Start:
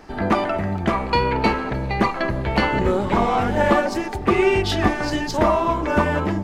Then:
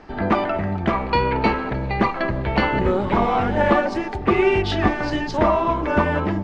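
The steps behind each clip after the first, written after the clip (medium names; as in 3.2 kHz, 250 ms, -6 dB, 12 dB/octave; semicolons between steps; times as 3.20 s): low-pass 4 kHz 12 dB/octave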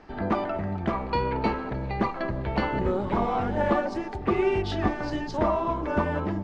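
dynamic bell 2.4 kHz, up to -5 dB, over -37 dBFS, Q 0.91; trim -6 dB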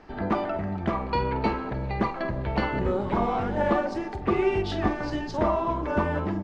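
doubling 47 ms -13 dB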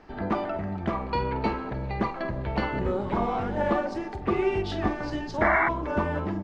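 painted sound noise, 5.41–5.69 s, 620–2300 Hz -22 dBFS; trim -1.5 dB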